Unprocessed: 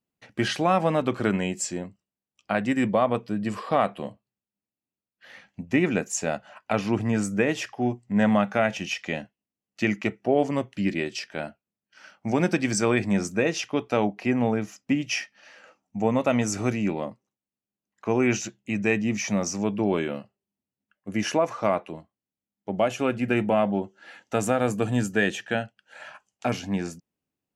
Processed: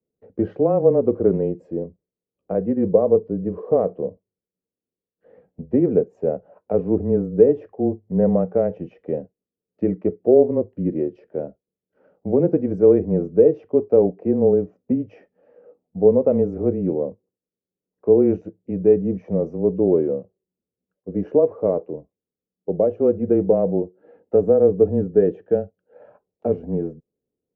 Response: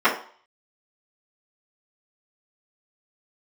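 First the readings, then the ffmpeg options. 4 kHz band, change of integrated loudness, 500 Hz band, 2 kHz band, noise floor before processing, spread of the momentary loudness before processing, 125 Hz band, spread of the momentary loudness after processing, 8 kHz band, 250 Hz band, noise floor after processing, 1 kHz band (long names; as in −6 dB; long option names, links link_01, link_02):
below −30 dB, +5.5 dB, +9.5 dB, below −20 dB, below −85 dBFS, 13 LU, +2.5 dB, 14 LU, below −40 dB, +3.0 dB, below −85 dBFS, −6.5 dB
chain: -af "afreqshift=-18,lowpass=frequency=460:width_type=q:width=5.2"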